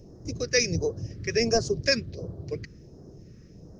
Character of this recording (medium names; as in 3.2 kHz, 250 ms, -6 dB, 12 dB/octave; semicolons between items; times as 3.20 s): phasing stages 2, 1.4 Hz, lowest notch 710–2300 Hz